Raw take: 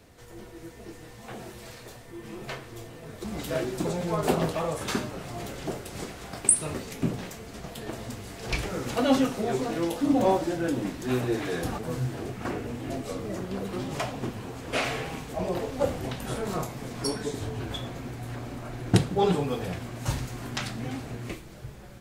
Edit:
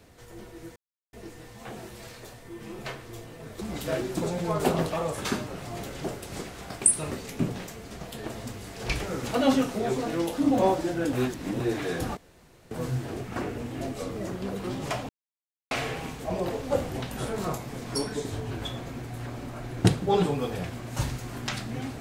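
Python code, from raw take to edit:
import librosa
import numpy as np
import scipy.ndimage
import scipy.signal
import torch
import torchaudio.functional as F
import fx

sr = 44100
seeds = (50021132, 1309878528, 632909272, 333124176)

y = fx.edit(x, sr, fx.insert_silence(at_s=0.76, length_s=0.37),
    fx.reverse_span(start_s=10.76, length_s=0.47),
    fx.insert_room_tone(at_s=11.8, length_s=0.54),
    fx.silence(start_s=14.18, length_s=0.62), tone=tone)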